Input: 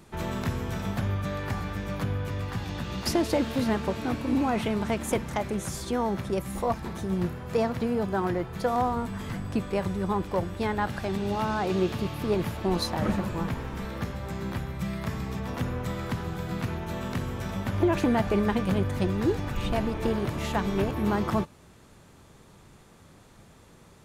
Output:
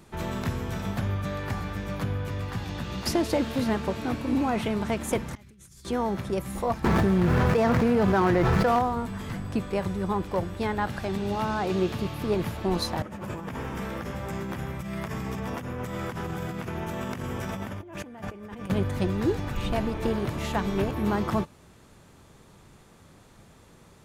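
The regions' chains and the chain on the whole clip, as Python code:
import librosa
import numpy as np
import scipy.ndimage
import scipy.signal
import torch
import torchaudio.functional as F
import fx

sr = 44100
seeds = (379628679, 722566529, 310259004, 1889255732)

y = fx.chain(x, sr, fx.tone_stack(knobs='6-0-2'),
    fx.over_compress(threshold_db=-52.0, ratio=-1.0), at=(5.35, 5.85))
y = fx.chain(y, sr, fx.median_filter(points=15),
    fx.peak_eq(hz=2000.0, db=5.0, octaves=1.7),
    fx.env_flatten(amount_pct=100), at=(6.84, 8.79))
y = fx.chain(y, sr, fx.highpass(hz=110.0, slope=6),
    fx.peak_eq(hz=4100.0, db=-10.0, octaves=0.25),
    fx.over_compress(threshold_db=-35.0, ratio=-1.0), at=(13.02, 18.7))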